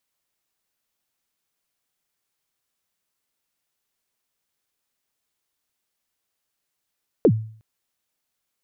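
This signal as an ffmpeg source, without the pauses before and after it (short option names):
-f lavfi -i "aevalsrc='0.376*pow(10,-3*t/0.5)*sin(2*PI*(530*0.065/log(110/530)*(exp(log(110/530)*min(t,0.065)/0.065)-1)+110*max(t-0.065,0)))':d=0.36:s=44100"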